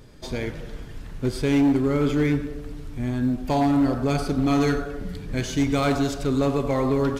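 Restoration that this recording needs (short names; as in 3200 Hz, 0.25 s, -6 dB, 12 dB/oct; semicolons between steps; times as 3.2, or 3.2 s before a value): clip repair -15 dBFS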